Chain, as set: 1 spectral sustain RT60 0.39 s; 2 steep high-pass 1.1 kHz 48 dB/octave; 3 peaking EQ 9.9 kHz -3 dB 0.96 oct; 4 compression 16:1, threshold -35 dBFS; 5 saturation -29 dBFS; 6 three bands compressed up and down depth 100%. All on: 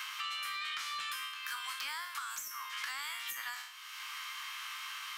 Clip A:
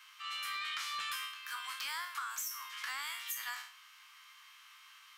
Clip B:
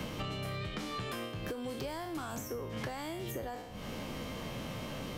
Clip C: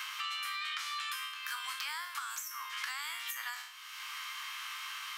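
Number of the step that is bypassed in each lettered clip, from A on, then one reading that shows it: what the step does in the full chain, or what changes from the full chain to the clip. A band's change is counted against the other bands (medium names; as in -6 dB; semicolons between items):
6, crest factor change -3.0 dB; 2, 500 Hz band +36.5 dB; 5, distortion -22 dB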